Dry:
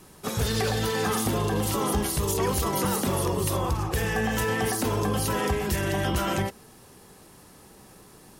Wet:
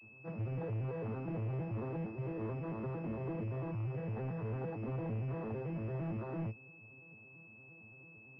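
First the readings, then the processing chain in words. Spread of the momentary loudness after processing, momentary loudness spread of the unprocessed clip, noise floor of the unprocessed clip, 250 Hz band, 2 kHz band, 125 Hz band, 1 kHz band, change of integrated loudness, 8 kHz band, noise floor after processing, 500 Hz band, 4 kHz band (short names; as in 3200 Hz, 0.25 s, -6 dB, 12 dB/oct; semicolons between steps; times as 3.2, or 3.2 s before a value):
16 LU, 2 LU, -52 dBFS, -12.0 dB, -20.5 dB, -8.5 dB, -20.0 dB, -13.5 dB, under -40 dB, -57 dBFS, -14.0 dB, under -35 dB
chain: arpeggiated vocoder minor triad, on A2, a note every 0.113 s; soft clip -27 dBFS, distortion -12 dB; pulse-width modulation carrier 2600 Hz; gain -7 dB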